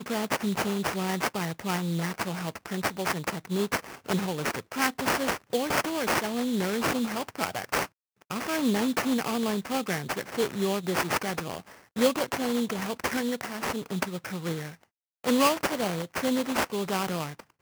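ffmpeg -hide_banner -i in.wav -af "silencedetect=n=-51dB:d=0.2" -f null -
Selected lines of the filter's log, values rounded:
silence_start: 7.87
silence_end: 8.22 | silence_duration: 0.34
silence_start: 14.84
silence_end: 15.24 | silence_duration: 0.41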